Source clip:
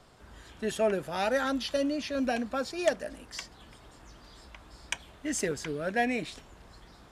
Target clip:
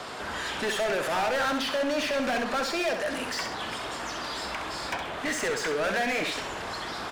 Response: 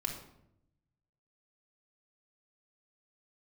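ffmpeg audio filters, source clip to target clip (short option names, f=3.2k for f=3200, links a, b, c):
-filter_complex "[0:a]acrossover=split=550|2000[a][b][c];[a]acompressor=threshold=-43dB:ratio=4[d];[b]acompressor=threshold=-34dB:ratio=4[e];[c]acompressor=threshold=-49dB:ratio=4[f];[d][e][f]amix=inputs=3:normalize=0,asplit=2[g][h];[h]highpass=f=720:p=1,volume=31dB,asoftclip=type=tanh:threshold=-21dB[i];[g][i]amix=inputs=2:normalize=0,lowpass=f=3.8k:p=1,volume=-6dB,aecho=1:1:66|132|198|264:0.447|0.17|0.0645|0.0245"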